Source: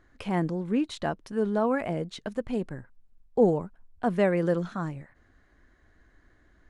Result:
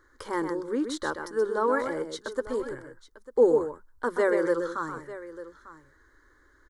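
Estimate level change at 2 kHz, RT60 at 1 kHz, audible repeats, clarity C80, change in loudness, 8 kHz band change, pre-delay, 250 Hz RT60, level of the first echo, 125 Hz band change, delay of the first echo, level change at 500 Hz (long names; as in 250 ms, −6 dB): +4.0 dB, no reverb audible, 2, no reverb audible, +0.5 dB, can't be measured, no reverb audible, no reverb audible, −7.5 dB, −15.5 dB, 128 ms, +2.5 dB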